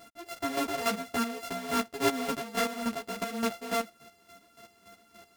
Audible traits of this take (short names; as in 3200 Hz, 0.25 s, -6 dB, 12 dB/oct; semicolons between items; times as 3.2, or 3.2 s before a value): a buzz of ramps at a fixed pitch in blocks of 64 samples; chopped level 3.5 Hz, depth 65%, duty 30%; a shimmering, thickened sound